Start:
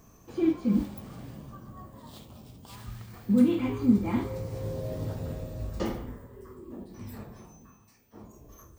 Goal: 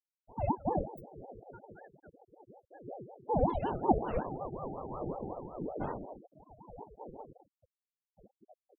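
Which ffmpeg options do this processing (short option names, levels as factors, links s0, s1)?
-af "flanger=delay=16:depth=5.7:speed=0.73,afftfilt=real='re*gte(hypot(re,im),0.02)':imag='im*gte(hypot(re,im),0.02)':win_size=1024:overlap=0.75,aeval=exprs='val(0)*sin(2*PI*460*n/s+460*0.5/5.4*sin(2*PI*5.4*n/s))':c=same"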